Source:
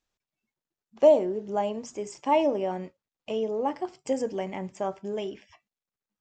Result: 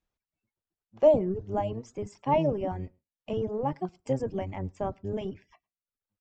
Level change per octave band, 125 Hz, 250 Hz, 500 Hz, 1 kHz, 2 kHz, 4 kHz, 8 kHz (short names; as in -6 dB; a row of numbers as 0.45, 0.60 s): n/a, -1.0 dB, -2.5 dB, -2.5 dB, -5.0 dB, -7.0 dB, under -10 dB